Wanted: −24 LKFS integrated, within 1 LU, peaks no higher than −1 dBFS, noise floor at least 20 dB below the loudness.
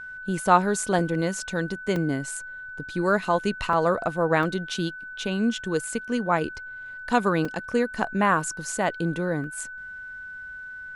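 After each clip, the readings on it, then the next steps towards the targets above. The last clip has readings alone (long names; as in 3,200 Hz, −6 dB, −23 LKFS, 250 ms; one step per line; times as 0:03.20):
number of dropouts 6; longest dropout 2.2 ms; interfering tone 1,500 Hz; level of the tone −36 dBFS; integrated loudness −25.5 LKFS; sample peak −5.0 dBFS; target loudness −24.0 LKFS
→ repair the gap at 0:00.99/0:01.96/0:03.73/0:04.43/0:07.45/0:09.44, 2.2 ms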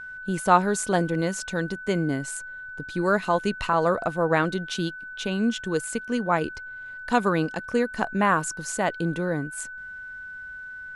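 number of dropouts 0; interfering tone 1,500 Hz; level of the tone −36 dBFS
→ notch filter 1,500 Hz, Q 30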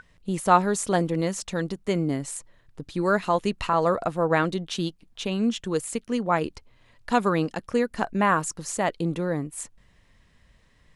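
interfering tone none found; integrated loudness −26.0 LKFS; sample peak −5.0 dBFS; target loudness −24.0 LKFS
→ level +2 dB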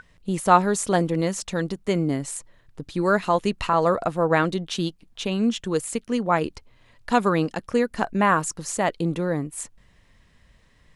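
integrated loudness −24.0 LKFS; sample peak −3.0 dBFS; background noise floor −59 dBFS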